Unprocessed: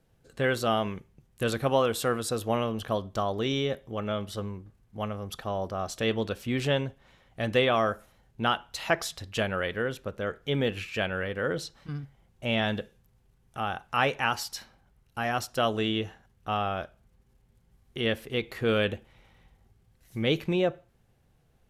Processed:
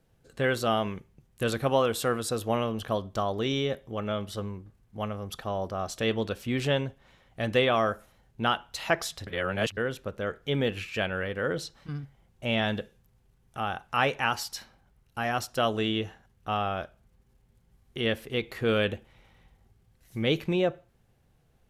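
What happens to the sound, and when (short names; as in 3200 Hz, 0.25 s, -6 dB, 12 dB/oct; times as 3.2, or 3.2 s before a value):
9.27–9.77 reverse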